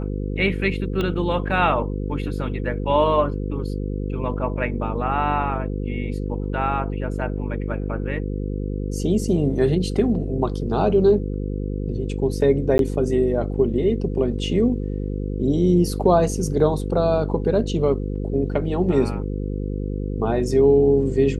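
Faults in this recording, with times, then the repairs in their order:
buzz 50 Hz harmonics 10 -26 dBFS
1.01 pop -13 dBFS
12.78–12.79 gap 12 ms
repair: de-click; de-hum 50 Hz, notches 10; interpolate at 12.78, 12 ms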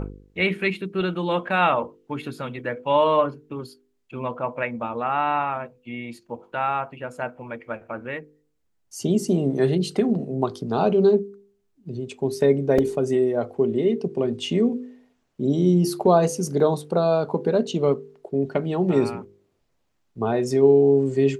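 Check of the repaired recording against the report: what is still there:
1.01 pop

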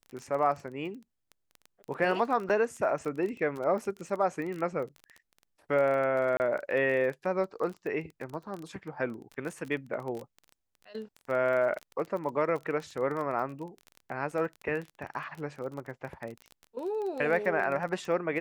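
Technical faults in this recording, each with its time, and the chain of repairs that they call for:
crackle 24/s -35 dBFS
2.49–2.5 gap 7.3 ms
6.37–6.4 gap 29 ms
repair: de-click; interpolate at 2.49, 7.3 ms; interpolate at 6.37, 29 ms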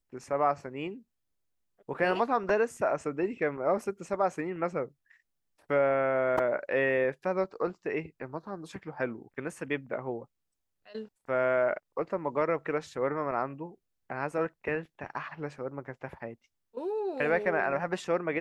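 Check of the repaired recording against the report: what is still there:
none

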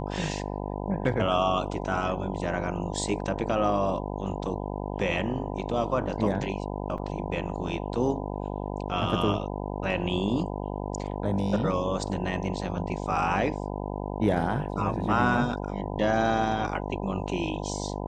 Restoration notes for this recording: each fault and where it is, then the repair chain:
buzz 50 Hz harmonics 20 -33 dBFS
6.98 gap 4.1 ms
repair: de-hum 50 Hz, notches 20; interpolate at 6.98, 4.1 ms

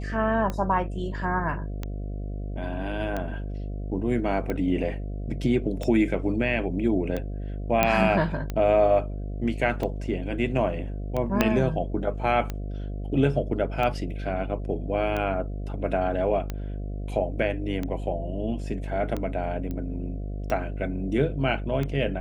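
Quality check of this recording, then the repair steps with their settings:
buzz 50 Hz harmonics 14 -32 dBFS
tick 45 rpm -17 dBFS
7.83 pop -6 dBFS
11.41 pop -6 dBFS
19.71 pop -21 dBFS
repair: de-click; de-hum 50 Hz, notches 14

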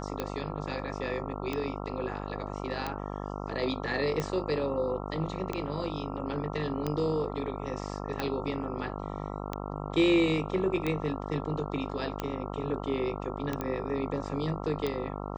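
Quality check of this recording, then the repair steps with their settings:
buzz 50 Hz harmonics 27 -37 dBFS
tick 45 rpm -17 dBFS
13.61 pop -19 dBFS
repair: de-click; de-hum 50 Hz, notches 27

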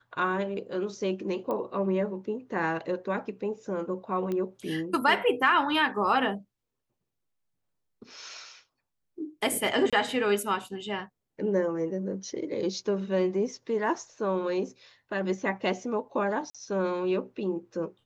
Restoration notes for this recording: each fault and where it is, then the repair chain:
1.51 pop -21 dBFS
4.32 pop -21 dBFS
9.9–9.93 gap 26 ms
16.5–16.55 gap 46 ms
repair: de-click; interpolate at 9.9, 26 ms; interpolate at 16.5, 46 ms

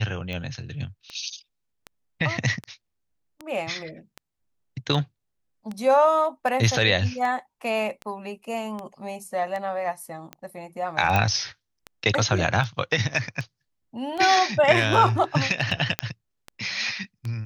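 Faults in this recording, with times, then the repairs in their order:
tick 78 rpm -20 dBFS
11.16 pop -9 dBFS
15.99 pop -6 dBFS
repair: de-click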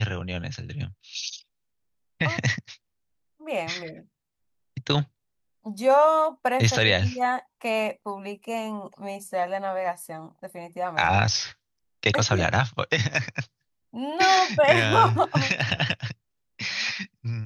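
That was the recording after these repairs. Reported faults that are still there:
15.99 pop

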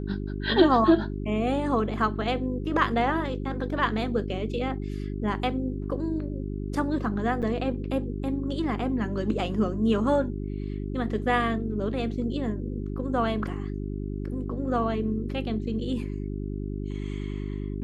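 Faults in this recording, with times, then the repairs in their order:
hum 50 Hz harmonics 8 -32 dBFS
7.42–7.43 gap 7.4 ms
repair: de-hum 50 Hz, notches 8; interpolate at 7.42, 7.4 ms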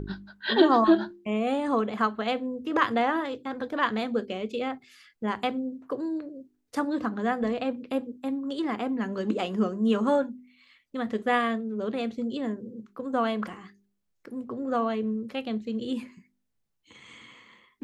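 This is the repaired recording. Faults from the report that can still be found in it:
none

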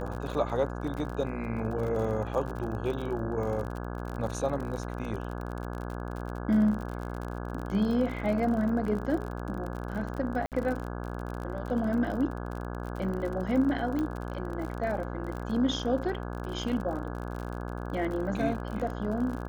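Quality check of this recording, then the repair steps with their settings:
buzz 60 Hz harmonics 28 -36 dBFS
crackle 46/s -35 dBFS
10.46–10.52 gap 58 ms
13.99 pop -20 dBFS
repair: de-click; de-hum 60 Hz, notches 28; interpolate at 10.46, 58 ms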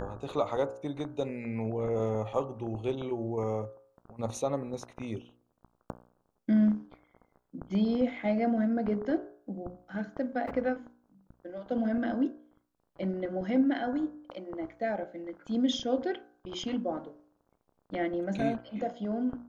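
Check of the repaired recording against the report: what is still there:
none

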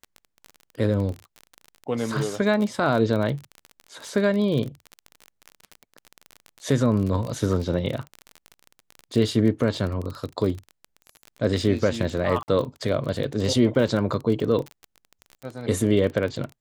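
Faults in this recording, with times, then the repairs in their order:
crackle 29/s -28 dBFS
12.43–12.48 gap 49 ms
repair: de-click; interpolate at 12.43, 49 ms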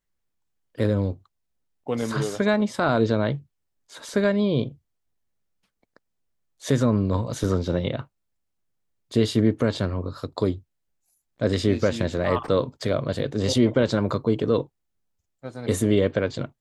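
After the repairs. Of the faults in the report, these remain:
none

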